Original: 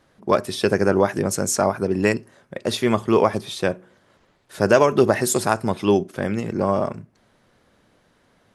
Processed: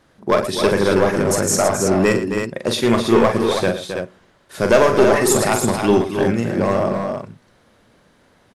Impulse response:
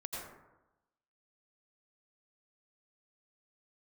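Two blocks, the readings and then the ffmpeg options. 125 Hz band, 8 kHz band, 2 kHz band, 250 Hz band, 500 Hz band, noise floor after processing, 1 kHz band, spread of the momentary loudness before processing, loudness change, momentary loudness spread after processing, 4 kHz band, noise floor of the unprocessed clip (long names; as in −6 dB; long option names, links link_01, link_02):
+3.5 dB, +5.0 dB, +4.0 dB, +4.0 dB, +4.0 dB, −56 dBFS, +3.0 dB, 9 LU, +3.5 dB, 10 LU, +5.0 dB, −61 dBFS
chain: -af "aeval=exprs='clip(val(0),-1,0.224)':channel_layout=same,aecho=1:1:43|113|268|325:0.473|0.224|0.376|0.473,volume=3dB"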